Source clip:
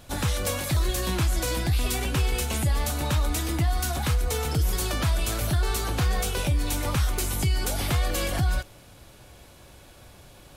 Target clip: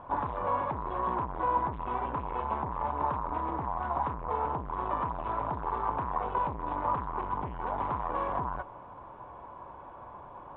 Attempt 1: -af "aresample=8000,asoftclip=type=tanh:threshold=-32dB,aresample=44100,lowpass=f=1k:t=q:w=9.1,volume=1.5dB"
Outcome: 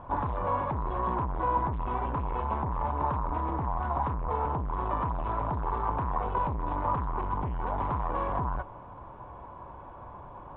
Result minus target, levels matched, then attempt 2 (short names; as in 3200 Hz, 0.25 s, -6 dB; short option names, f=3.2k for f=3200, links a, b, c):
125 Hz band +6.0 dB
-af "aresample=8000,asoftclip=type=tanh:threshold=-32dB,aresample=44100,lowpass=f=1k:t=q:w=9.1,lowshelf=f=170:g=-10,volume=1.5dB"